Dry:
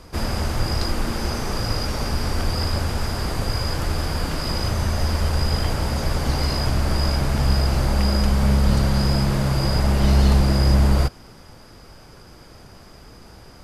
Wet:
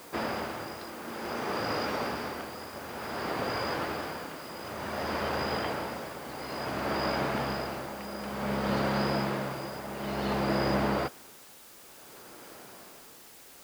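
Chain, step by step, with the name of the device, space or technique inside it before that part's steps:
shortwave radio (band-pass filter 290–2,900 Hz; amplitude tremolo 0.56 Hz, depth 73%; white noise bed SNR 19 dB)

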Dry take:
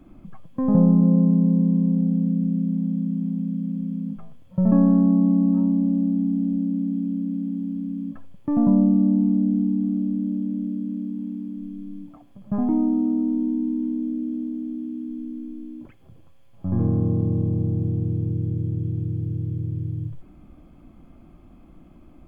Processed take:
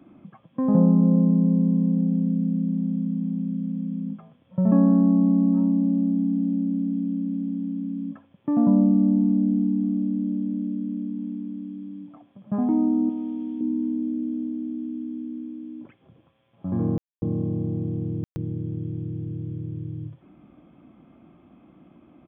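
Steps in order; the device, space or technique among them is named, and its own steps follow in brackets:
0:13.09–0:13.61: tilt shelving filter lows −8.5 dB, about 890 Hz
call with lost packets (high-pass filter 150 Hz 12 dB per octave; downsampling to 8,000 Hz; dropped packets of 60 ms bursts)

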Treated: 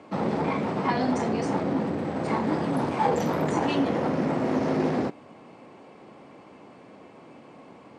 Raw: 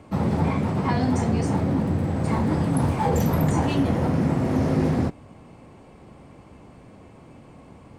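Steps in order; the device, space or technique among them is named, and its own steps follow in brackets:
public-address speaker with an overloaded transformer (saturating transformer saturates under 280 Hz; band-pass filter 260–5,700 Hz)
level +2 dB

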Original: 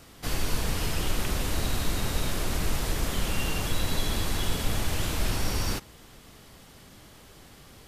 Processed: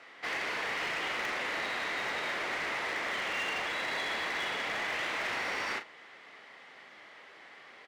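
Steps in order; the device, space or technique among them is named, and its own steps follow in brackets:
megaphone (band-pass filter 580–2,800 Hz; parametric band 2,000 Hz +10 dB 0.42 octaves; hard clipping −31 dBFS, distortion −16 dB; double-tracking delay 38 ms −10 dB)
level +1.5 dB

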